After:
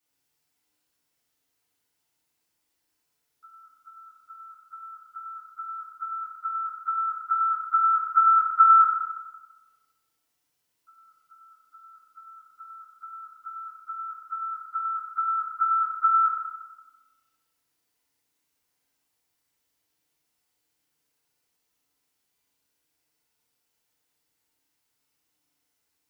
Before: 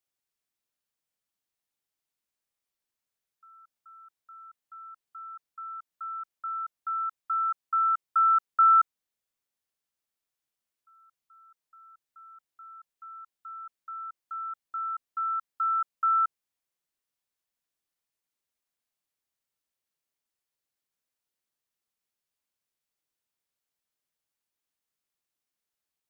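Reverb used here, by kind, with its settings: FDN reverb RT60 1.2 s, low-frequency decay 1.2×, high-frequency decay 0.85×, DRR -9 dB; trim +1.5 dB

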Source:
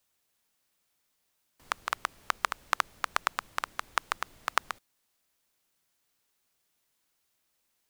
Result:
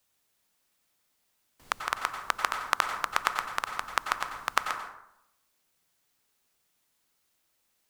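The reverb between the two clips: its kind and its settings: plate-style reverb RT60 0.8 s, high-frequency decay 0.5×, pre-delay 80 ms, DRR 5.5 dB; trim +1.5 dB

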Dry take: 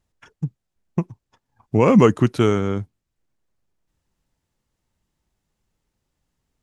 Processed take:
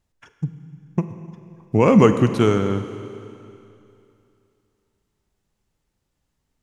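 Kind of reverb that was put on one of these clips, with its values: Schroeder reverb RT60 2.7 s, combs from 33 ms, DRR 9 dB

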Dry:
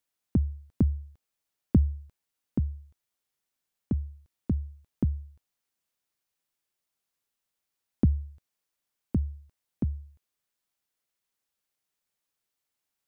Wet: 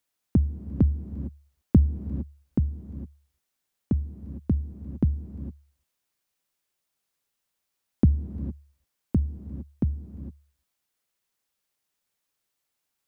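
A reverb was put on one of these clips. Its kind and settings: gated-style reverb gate 480 ms rising, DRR 11 dB; trim +3.5 dB

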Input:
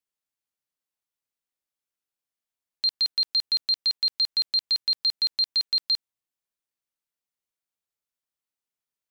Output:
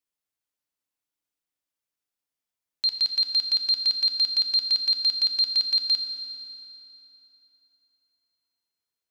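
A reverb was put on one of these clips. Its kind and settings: FDN reverb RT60 3.5 s, high-frequency decay 0.8×, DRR 5.5 dB

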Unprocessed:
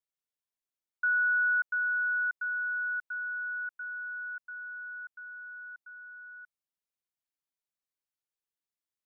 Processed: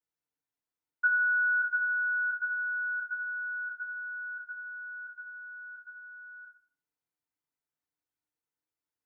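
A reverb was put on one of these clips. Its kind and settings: FDN reverb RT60 0.44 s, low-frequency decay 1.3×, high-frequency decay 0.3×, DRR -9 dB; trim -8 dB

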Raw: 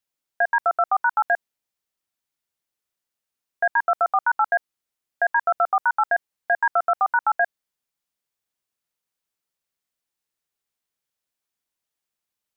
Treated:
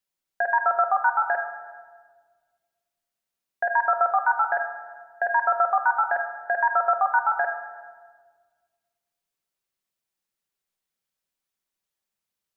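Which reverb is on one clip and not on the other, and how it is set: simulated room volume 1700 m³, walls mixed, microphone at 1.1 m; trim -2 dB

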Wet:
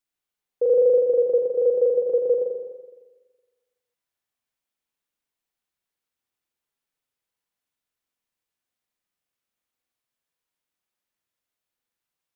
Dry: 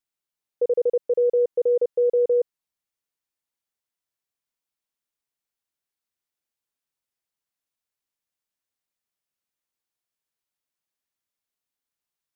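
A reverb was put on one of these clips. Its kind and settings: spring tank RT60 1.3 s, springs 42/46 ms, chirp 20 ms, DRR -1 dB

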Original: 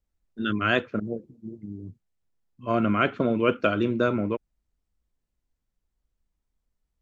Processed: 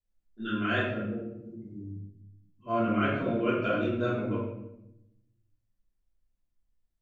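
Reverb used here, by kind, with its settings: simulated room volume 270 m³, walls mixed, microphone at 3.1 m; trim -14.5 dB

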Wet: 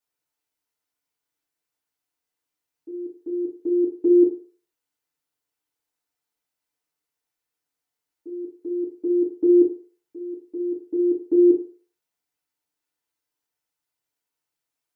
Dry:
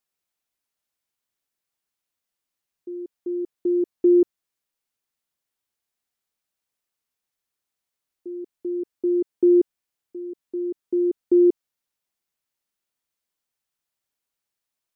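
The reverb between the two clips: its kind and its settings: FDN reverb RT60 0.44 s, low-frequency decay 0.7×, high-frequency decay 0.6×, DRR -7.5 dB; trim -7.5 dB

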